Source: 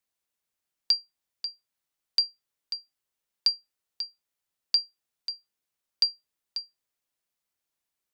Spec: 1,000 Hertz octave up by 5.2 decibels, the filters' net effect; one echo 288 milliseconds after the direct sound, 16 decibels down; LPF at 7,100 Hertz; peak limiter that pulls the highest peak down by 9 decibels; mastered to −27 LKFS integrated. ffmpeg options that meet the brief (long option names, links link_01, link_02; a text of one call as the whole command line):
ffmpeg -i in.wav -af "lowpass=7100,equalizer=frequency=1000:width_type=o:gain=6.5,alimiter=limit=-21dB:level=0:latency=1,aecho=1:1:288:0.158,volume=7.5dB" out.wav